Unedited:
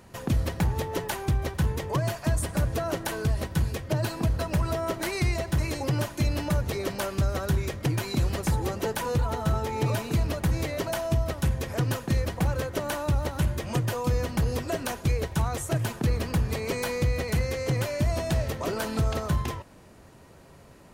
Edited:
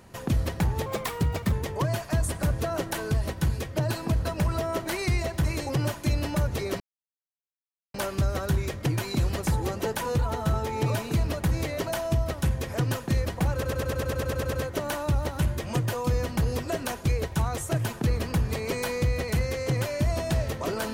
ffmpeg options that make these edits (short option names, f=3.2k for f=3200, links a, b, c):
-filter_complex "[0:a]asplit=14[a][b][c][d][e][f][g][h][i][j][k][l][m][n];[a]atrim=end=0.864[o];[b]atrim=start=0.86:end=1.66,asetpts=PTS-STARTPTS,asetrate=53361,aresample=44100,atrim=end_sample=29157,asetpts=PTS-STARTPTS[p];[c]atrim=start=1.656:end=6.94,asetpts=PTS-STARTPTS,afade=t=out:st=5.28:d=0.004:c=hsin,apad=pad_dur=1.14[q];[d]atrim=start=6.94:end=12.632,asetpts=PTS-STARTPTS,afade=t=in:d=0.004:c=hsin[r];[e]atrim=start=12.528:end=12.632[s];[f]atrim=start=12.528:end=12.632[t];[g]atrim=start=12.528:end=12.632[u];[h]atrim=start=12.528:end=12.632[v];[i]atrim=start=12.528:end=12.632[w];[j]atrim=start=12.528:end=12.632[x];[k]atrim=start=12.528:end=12.632[y];[l]atrim=start=12.528:end=12.632[z];[m]atrim=start=12.528:end=12.632[aa];[n]atrim=start=12.528[ab];[o][p]acrossfade=d=0.004:c1=hsin:c2=hsin[ac];[q][r]concat=n=2:v=0:a=1[ad];[ac][ad]acrossfade=d=0.004:c1=hsin:c2=hsin[ae];[ae][s]acrossfade=d=0.004:c1=hsin:c2=hsin[af];[af][t]acrossfade=d=0.004:c1=hsin:c2=hsin[ag];[ag][u]acrossfade=d=0.004:c1=hsin:c2=hsin[ah];[ah][v]acrossfade=d=0.004:c1=hsin:c2=hsin[ai];[ai][w]acrossfade=d=0.004:c1=hsin:c2=hsin[aj];[aj][x]acrossfade=d=0.004:c1=hsin:c2=hsin[ak];[ak][y]acrossfade=d=0.004:c1=hsin:c2=hsin[al];[al][z]acrossfade=d=0.004:c1=hsin:c2=hsin[am];[am][aa]acrossfade=d=0.004:c1=hsin:c2=hsin[an];[an][ab]acrossfade=d=0.004:c1=hsin:c2=hsin"